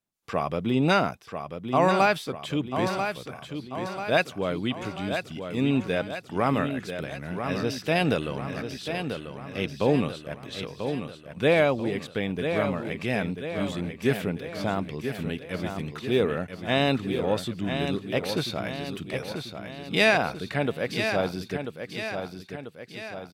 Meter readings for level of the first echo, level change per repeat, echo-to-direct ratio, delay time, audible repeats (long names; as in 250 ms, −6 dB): −7.5 dB, −5.5 dB, −6.0 dB, 990 ms, 4